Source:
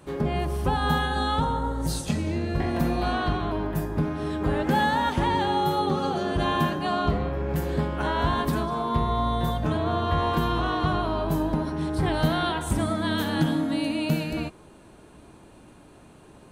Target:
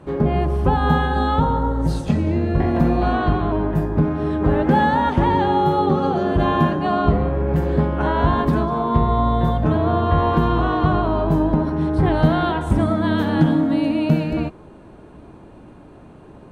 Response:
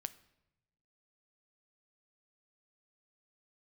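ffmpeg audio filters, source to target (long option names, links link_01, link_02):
-af "lowpass=frequency=1100:poles=1,volume=8dB"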